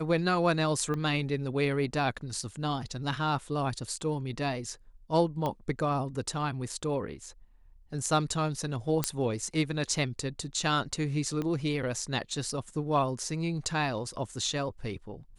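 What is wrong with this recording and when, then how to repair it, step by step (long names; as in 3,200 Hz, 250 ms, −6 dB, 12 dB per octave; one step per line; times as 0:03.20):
0:00.94: click −22 dBFS
0:05.46: click −19 dBFS
0:09.04: click −9 dBFS
0:11.42: click −21 dBFS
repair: click removal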